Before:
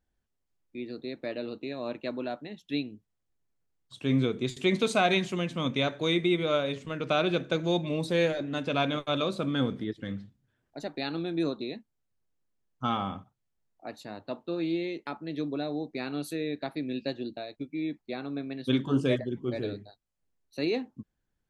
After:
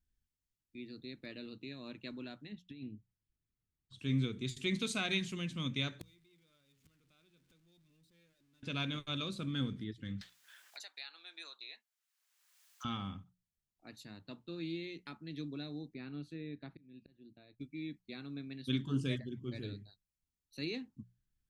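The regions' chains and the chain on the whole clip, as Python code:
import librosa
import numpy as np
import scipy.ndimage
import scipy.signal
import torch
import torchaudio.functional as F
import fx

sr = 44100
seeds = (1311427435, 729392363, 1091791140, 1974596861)

y = fx.chain(x, sr, fx.lowpass(hz=1500.0, slope=6),
    fx.over_compress(threshold_db=-37.0, ratio=-1.0), at=(2.52, 3.99))
y = fx.chain(y, sr, fx.zero_step(step_db=-29.5),
    fx.gate_flip(shuts_db=-29.0, range_db=-35), at=(6.01, 8.63))
y = fx.chain(y, sr, fx.highpass(hz=730.0, slope=24),
    fx.band_squash(depth_pct=100), at=(10.21, 12.85))
y = fx.chain(y, sr, fx.auto_swell(attack_ms=665.0),
    fx.spacing_loss(db_at_10k=29), at=(15.94, 17.6))
y = fx.tone_stack(y, sr, knobs='6-0-2')
y = fx.hum_notches(y, sr, base_hz=60, count=3)
y = F.gain(torch.from_numpy(y), 11.0).numpy()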